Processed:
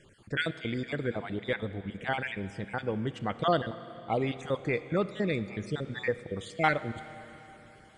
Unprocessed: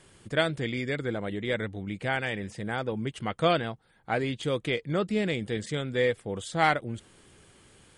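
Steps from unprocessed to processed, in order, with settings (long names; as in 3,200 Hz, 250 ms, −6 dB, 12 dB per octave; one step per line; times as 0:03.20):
time-frequency cells dropped at random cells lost 36%
high-shelf EQ 5,600 Hz −11.5 dB
four-comb reverb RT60 3.6 s, combs from 27 ms, DRR 13 dB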